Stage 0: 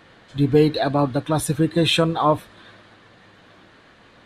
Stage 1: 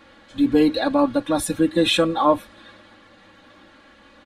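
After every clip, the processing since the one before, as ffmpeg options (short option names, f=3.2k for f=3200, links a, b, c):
-af "aecho=1:1:3.6:0.99,volume=-2.5dB"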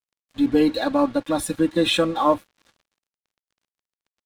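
-af "aeval=exprs='sgn(val(0))*max(abs(val(0))-0.00891,0)':c=same,volume=-1dB"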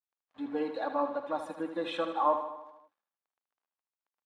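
-filter_complex "[0:a]bandpass=f=920:t=q:w=1.4:csg=0,asplit=2[a][b];[b]aecho=0:1:77|154|231|308|385|462|539:0.355|0.209|0.124|0.0729|0.043|0.0254|0.015[c];[a][c]amix=inputs=2:normalize=0,volume=-5.5dB"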